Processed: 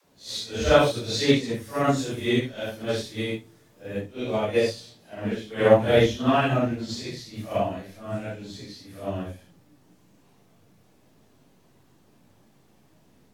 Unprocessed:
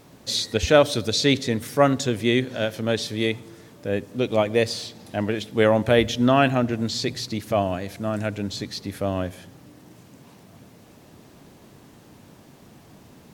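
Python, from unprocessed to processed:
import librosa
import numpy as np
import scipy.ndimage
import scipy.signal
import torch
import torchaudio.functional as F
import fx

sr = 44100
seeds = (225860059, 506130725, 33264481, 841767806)

p1 = fx.phase_scramble(x, sr, seeds[0], window_ms=200)
p2 = fx.high_shelf(p1, sr, hz=9900.0, db=6.0, at=(1.84, 4.01))
p3 = fx.backlash(p2, sr, play_db=-17.5)
p4 = p2 + F.gain(torch.from_numpy(p3), -12.0).numpy()
p5 = fx.dispersion(p4, sr, late='lows', ms=53.0, hz=330.0)
y = fx.upward_expand(p5, sr, threshold_db=-32.0, expansion=1.5)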